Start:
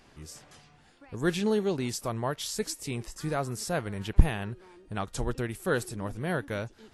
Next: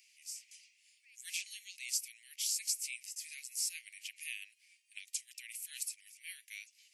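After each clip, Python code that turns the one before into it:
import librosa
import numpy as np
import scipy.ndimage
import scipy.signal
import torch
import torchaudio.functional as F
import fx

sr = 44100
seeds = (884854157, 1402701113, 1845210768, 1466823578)

y = scipy.signal.sosfilt(scipy.signal.butter(12, 2200.0, 'highpass', fs=sr, output='sos'), x)
y = fx.peak_eq(y, sr, hz=3600.0, db=-11.5, octaves=0.58)
y = F.gain(torch.from_numpy(y), 3.5).numpy()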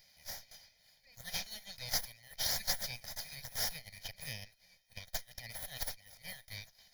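y = fx.lower_of_two(x, sr, delay_ms=1.6)
y = fx.fixed_phaser(y, sr, hz=1800.0, stages=8)
y = F.gain(torch.from_numpy(y), 7.0).numpy()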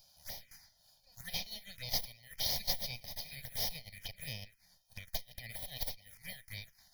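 y = fx.env_phaser(x, sr, low_hz=310.0, high_hz=1500.0, full_db=-41.0)
y = F.gain(torch.from_numpy(y), 2.5).numpy()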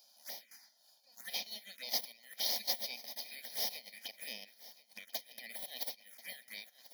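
y = fx.brickwall_highpass(x, sr, low_hz=200.0)
y = fx.echo_feedback(y, sr, ms=1037, feedback_pct=18, wet_db=-18.5)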